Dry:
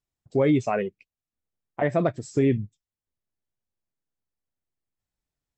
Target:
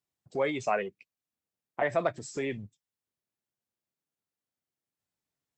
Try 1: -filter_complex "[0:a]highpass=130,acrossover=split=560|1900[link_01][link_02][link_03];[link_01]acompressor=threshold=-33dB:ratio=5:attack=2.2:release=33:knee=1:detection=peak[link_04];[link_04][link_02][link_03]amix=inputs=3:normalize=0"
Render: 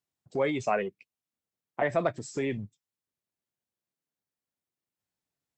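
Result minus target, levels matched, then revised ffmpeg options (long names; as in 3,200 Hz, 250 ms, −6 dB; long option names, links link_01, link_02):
downward compressor: peak gain reduction −5 dB
-filter_complex "[0:a]highpass=130,acrossover=split=560|1900[link_01][link_02][link_03];[link_01]acompressor=threshold=-39dB:ratio=5:attack=2.2:release=33:knee=1:detection=peak[link_04];[link_04][link_02][link_03]amix=inputs=3:normalize=0"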